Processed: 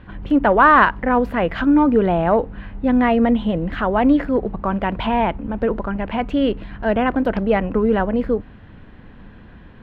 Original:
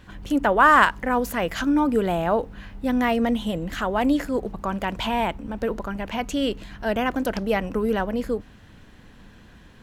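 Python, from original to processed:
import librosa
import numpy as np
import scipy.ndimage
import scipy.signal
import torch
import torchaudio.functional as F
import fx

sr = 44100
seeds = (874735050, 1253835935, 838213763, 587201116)

p1 = np.clip(x, -10.0 ** (-16.0 / 20.0), 10.0 ** (-16.0 / 20.0))
p2 = x + (p1 * librosa.db_to_amplitude(-7.5))
p3 = fx.air_absorb(p2, sr, metres=440.0)
y = p3 * librosa.db_to_amplitude(4.0)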